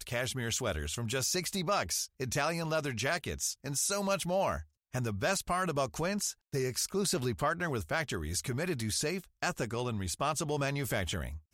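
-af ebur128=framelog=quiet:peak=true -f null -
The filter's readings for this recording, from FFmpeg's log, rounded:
Integrated loudness:
  I:         -33.0 LUFS
  Threshold: -43.0 LUFS
Loudness range:
  LRA:         1.5 LU
  Threshold: -52.9 LUFS
  LRA low:   -33.7 LUFS
  LRA high:  -32.2 LUFS
True peak:
  Peak:      -18.0 dBFS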